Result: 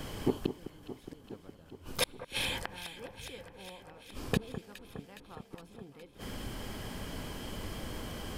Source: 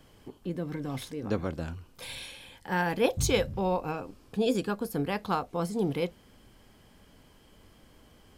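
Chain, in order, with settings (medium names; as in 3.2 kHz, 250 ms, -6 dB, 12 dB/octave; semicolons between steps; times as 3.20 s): inverted gate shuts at -31 dBFS, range -39 dB; echo whose repeats swap between lows and highs 207 ms, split 1.6 kHz, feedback 83%, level -11 dB; trim +16 dB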